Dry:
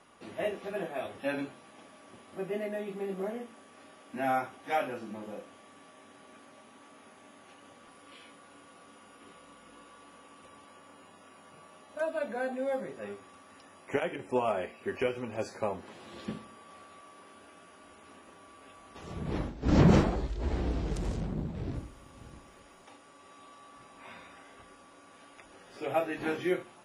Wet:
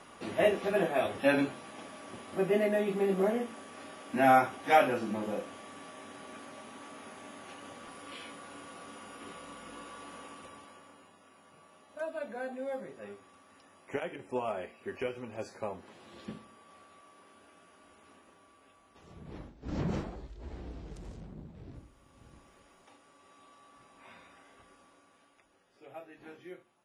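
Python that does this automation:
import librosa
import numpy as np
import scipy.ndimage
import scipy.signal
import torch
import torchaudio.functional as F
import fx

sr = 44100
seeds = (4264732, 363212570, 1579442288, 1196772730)

y = fx.gain(x, sr, db=fx.line((10.24, 7.0), (11.17, -5.0), (18.08, -5.0), (19.25, -12.5), (21.68, -12.5), (22.41, -5.5), (24.85, -5.5), (25.76, -17.5)))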